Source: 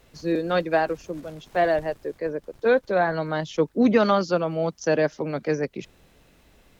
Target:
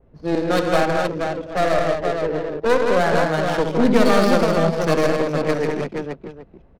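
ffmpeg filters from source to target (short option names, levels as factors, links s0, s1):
-filter_complex "[0:a]adynamicequalizer=threshold=0.00282:dfrequency=4900:dqfactor=1.4:tfrequency=4900:tqfactor=1.4:attack=5:release=100:ratio=0.375:range=4:mode=boostabove:tftype=bell,aeval=exprs='clip(val(0),-1,0.0531)':c=same,asplit=2[s0][s1];[s1]aecho=0:1:66|86|161|215|475|774:0.376|0.266|0.562|0.562|0.562|0.188[s2];[s0][s2]amix=inputs=2:normalize=0,adynamicsmooth=sensitivity=4:basefreq=730,volume=1.5"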